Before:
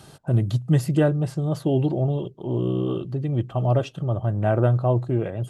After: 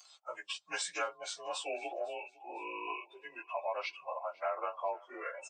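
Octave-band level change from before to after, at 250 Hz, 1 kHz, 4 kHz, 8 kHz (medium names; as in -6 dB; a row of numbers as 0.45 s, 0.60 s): -31.0 dB, -5.5 dB, 0.0 dB, no reading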